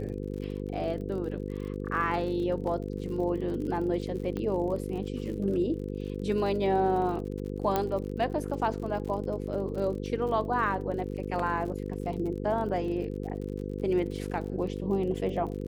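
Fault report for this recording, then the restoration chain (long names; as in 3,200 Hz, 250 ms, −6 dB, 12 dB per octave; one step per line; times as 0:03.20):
mains buzz 50 Hz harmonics 10 −35 dBFS
surface crackle 49 per second −38 dBFS
0:04.37: click −22 dBFS
0:07.76: click −13 dBFS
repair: click removal
hum removal 50 Hz, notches 10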